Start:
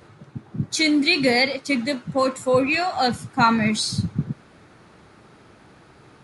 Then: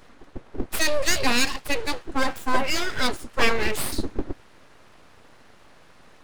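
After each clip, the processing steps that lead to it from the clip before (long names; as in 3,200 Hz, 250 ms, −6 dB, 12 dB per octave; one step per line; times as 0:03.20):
full-wave rectification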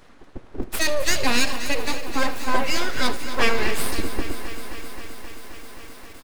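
repeating echo 76 ms, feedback 59%, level −17 dB
feedback echo at a low word length 264 ms, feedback 80%, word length 6 bits, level −12.5 dB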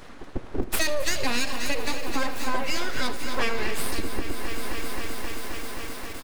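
downward compressor 5 to 1, threshold −26 dBFS, peak gain reduction 13.5 dB
level +6.5 dB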